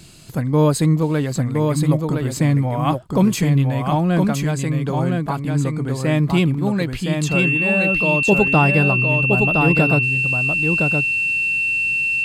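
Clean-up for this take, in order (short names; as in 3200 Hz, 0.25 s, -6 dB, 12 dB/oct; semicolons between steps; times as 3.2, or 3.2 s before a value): notch 2700 Hz, Q 30; inverse comb 1.015 s -4 dB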